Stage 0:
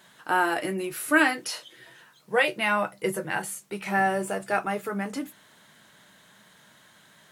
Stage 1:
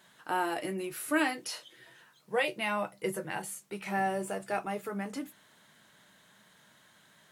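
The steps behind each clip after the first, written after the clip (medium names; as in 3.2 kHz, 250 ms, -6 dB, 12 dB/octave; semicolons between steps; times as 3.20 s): dynamic bell 1.5 kHz, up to -6 dB, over -38 dBFS, Q 2.1; trim -5.5 dB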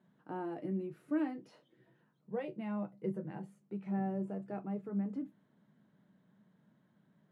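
band-pass filter 190 Hz, Q 1.5; trim +3 dB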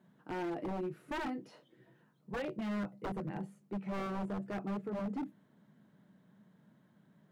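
wavefolder -36 dBFS; trim +4 dB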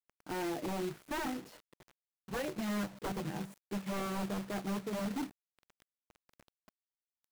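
companded quantiser 4-bit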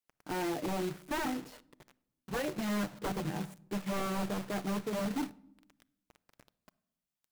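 simulated room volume 2500 m³, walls furnished, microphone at 0.39 m; trim +2.5 dB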